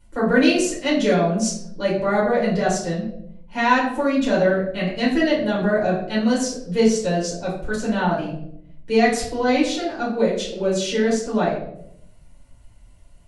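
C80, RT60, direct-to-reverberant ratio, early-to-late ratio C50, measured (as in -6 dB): 8.5 dB, 0.70 s, -7.0 dB, 4.5 dB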